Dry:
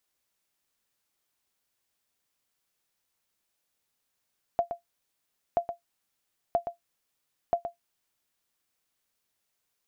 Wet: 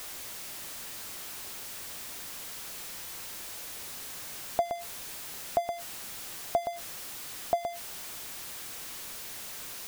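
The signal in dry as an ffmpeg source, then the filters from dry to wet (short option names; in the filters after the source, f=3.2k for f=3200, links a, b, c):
-f lavfi -i "aevalsrc='0.168*(sin(2*PI*689*mod(t,0.98))*exp(-6.91*mod(t,0.98)/0.13)+0.355*sin(2*PI*689*max(mod(t,0.98)-0.12,0))*exp(-6.91*max(mod(t,0.98)-0.12,0)/0.13))':d=3.92:s=44100"
-af "aeval=exprs='val(0)+0.5*0.0178*sgn(val(0))':c=same"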